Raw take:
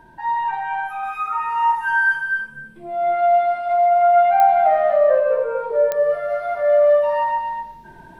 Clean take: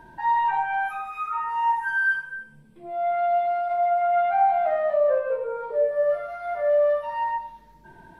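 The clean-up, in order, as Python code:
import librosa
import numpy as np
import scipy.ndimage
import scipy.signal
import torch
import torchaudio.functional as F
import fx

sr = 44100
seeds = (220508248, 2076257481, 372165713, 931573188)

y = fx.fix_declick_ar(x, sr, threshold=10.0)
y = fx.fix_echo_inverse(y, sr, delay_ms=247, level_db=-6.5)
y = fx.fix_level(y, sr, at_s=1.03, step_db=-5.0)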